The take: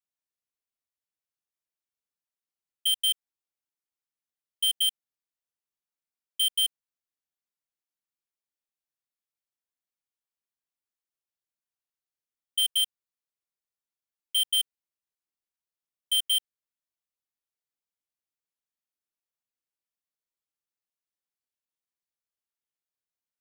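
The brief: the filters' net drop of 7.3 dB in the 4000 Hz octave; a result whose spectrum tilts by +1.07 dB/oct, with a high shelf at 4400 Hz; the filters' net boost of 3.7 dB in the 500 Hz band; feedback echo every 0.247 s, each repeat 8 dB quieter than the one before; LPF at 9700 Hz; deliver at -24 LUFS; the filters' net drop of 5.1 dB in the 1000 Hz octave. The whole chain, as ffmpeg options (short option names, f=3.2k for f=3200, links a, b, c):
-af "lowpass=9.7k,equalizer=f=500:t=o:g=7,equalizer=f=1k:t=o:g=-8,equalizer=f=4k:t=o:g=-7.5,highshelf=f=4.4k:g=-5.5,aecho=1:1:247|494|741|988|1235:0.398|0.159|0.0637|0.0255|0.0102,volume=10.5dB"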